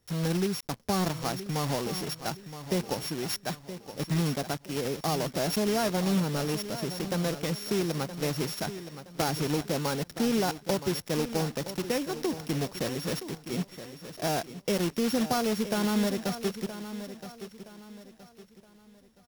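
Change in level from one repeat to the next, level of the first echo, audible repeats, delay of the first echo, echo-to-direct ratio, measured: -9.0 dB, -12.0 dB, 3, 0.97 s, -11.5 dB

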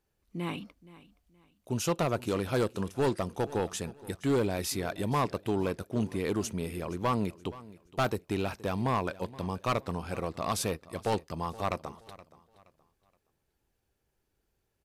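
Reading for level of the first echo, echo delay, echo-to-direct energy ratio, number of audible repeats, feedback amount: -19.0 dB, 0.472 s, -18.5 dB, 2, 30%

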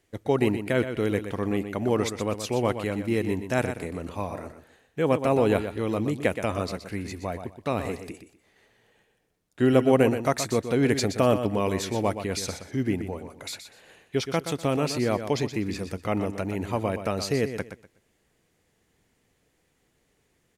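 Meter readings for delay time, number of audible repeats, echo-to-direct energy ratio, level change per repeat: 0.123 s, 2, -9.5 dB, -13.0 dB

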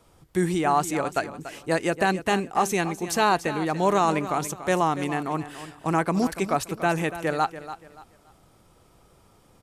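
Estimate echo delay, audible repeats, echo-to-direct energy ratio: 0.287 s, 3, -12.5 dB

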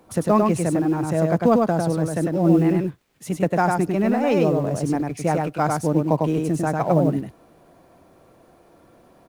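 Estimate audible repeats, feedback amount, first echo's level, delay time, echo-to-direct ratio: 1, no steady repeat, -3.0 dB, 0.1 s, -3.0 dB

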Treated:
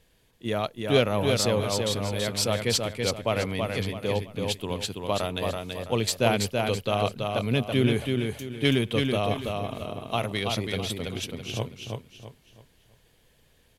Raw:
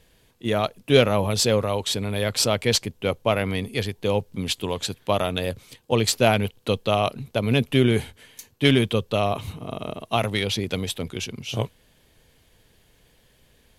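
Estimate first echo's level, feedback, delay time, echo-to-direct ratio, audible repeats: -4.0 dB, 33%, 0.33 s, -3.5 dB, 4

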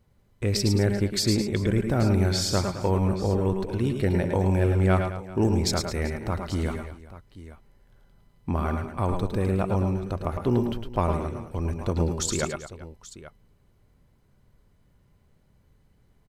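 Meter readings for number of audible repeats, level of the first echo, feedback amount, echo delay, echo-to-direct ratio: 4, -7.0 dB, no steady repeat, 0.106 s, -4.0 dB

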